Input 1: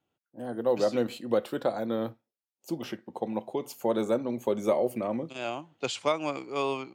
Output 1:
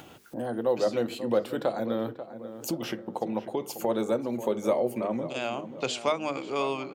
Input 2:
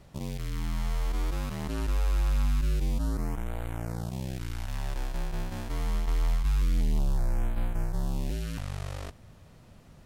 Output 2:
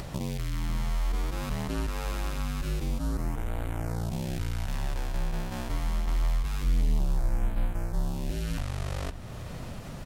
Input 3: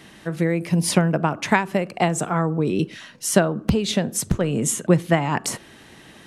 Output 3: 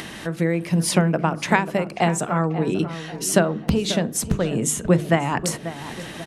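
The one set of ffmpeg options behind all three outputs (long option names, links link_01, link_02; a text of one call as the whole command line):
ffmpeg -i in.wav -filter_complex "[0:a]bandreject=frequency=50:width_type=h:width=6,bandreject=frequency=100:width_type=h:width=6,bandreject=frequency=150:width_type=h:width=6,bandreject=frequency=200:width_type=h:width=6,bandreject=frequency=250:width_type=h:width=6,bandreject=frequency=300:width_type=h:width=6,bandreject=frequency=350:width_type=h:width=6,bandreject=frequency=400:width_type=h:width=6,bandreject=frequency=450:width_type=h:width=6,acompressor=mode=upward:threshold=-25dB:ratio=2.5,asplit=2[link_01][link_02];[link_02]adelay=539,lowpass=frequency=2000:poles=1,volume=-12dB,asplit=2[link_03][link_04];[link_04]adelay=539,lowpass=frequency=2000:poles=1,volume=0.46,asplit=2[link_05][link_06];[link_06]adelay=539,lowpass=frequency=2000:poles=1,volume=0.46,asplit=2[link_07][link_08];[link_08]adelay=539,lowpass=frequency=2000:poles=1,volume=0.46,asplit=2[link_09][link_10];[link_10]adelay=539,lowpass=frequency=2000:poles=1,volume=0.46[link_11];[link_03][link_05][link_07][link_09][link_11]amix=inputs=5:normalize=0[link_12];[link_01][link_12]amix=inputs=2:normalize=0" out.wav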